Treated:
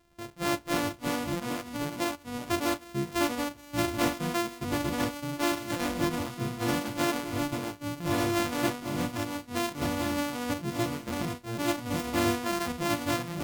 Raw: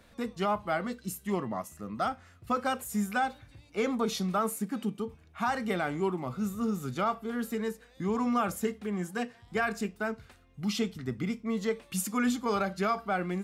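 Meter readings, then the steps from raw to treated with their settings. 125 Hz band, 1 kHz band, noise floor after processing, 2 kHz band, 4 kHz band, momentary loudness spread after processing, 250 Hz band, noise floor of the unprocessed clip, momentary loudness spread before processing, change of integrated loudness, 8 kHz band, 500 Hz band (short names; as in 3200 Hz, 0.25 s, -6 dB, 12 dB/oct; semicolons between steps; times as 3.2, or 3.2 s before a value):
+3.5 dB, -0.5 dB, -50 dBFS, +2.0 dB, +7.0 dB, 6 LU, +1.5 dB, -59 dBFS, 7 LU, +1.5 dB, +4.0 dB, +0.5 dB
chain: sample sorter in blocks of 128 samples; echoes that change speed 0.232 s, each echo -3 st, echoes 2; spectral noise reduction 7 dB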